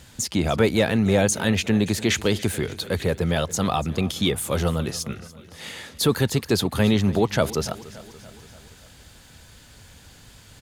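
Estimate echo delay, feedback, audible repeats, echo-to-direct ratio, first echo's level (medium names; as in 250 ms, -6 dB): 287 ms, 58%, 4, -16.5 dB, -18.5 dB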